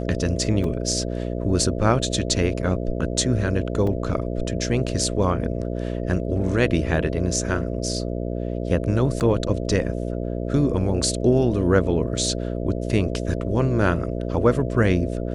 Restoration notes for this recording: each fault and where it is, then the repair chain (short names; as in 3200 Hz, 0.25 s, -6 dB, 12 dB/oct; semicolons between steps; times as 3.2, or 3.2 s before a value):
buzz 60 Hz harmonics 11 -27 dBFS
0.64 gap 2.8 ms
3.87 gap 3.4 ms
9.2–9.21 gap 8.5 ms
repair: de-hum 60 Hz, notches 11; interpolate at 0.64, 2.8 ms; interpolate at 3.87, 3.4 ms; interpolate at 9.2, 8.5 ms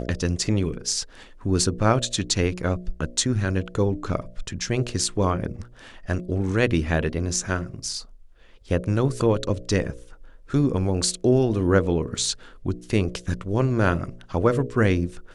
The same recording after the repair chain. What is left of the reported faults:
none